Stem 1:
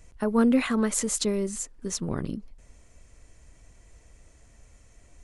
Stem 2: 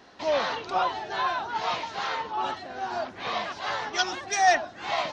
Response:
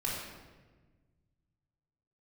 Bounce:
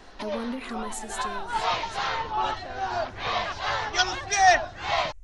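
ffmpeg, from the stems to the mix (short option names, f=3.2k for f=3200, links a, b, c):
-filter_complex "[0:a]alimiter=limit=-19.5dB:level=0:latency=1:release=326,volume=-5dB,afade=t=out:st=0.89:d=0.72:silence=0.266073,asplit=3[a][b][c];[b]volume=-17dB[d];[1:a]volume=3dB[e];[c]apad=whole_len=225926[f];[e][f]sidechaincompress=threshold=-45dB:ratio=12:attack=23:release=109[g];[2:a]atrim=start_sample=2205[h];[d][h]afir=irnorm=-1:irlink=0[i];[a][g][i]amix=inputs=3:normalize=0,asubboost=boost=12:cutoff=71"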